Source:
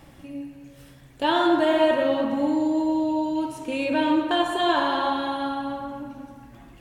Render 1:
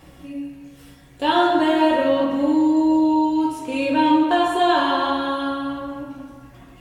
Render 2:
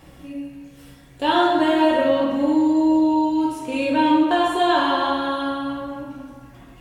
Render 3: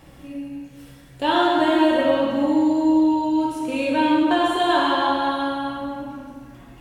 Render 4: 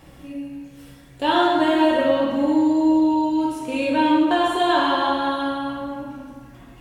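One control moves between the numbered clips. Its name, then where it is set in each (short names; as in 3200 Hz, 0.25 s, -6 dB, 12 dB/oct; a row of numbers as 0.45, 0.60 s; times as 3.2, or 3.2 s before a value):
non-linear reverb, gate: 90, 150, 430, 240 ms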